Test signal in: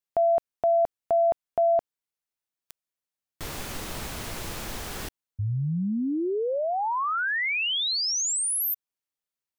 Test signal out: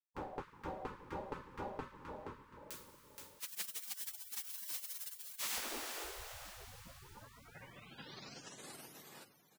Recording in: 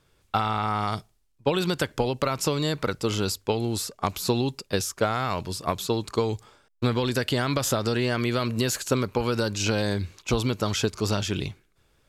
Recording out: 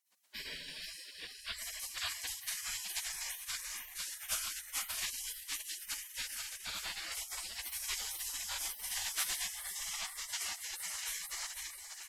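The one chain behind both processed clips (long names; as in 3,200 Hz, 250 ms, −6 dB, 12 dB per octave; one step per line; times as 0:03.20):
echo with shifted repeats 474 ms, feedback 33%, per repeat +30 Hz, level −3.5 dB
coupled-rooms reverb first 0.4 s, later 4.8 s, from −18 dB, DRR −8.5 dB
gate on every frequency bin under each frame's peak −30 dB weak
level −5 dB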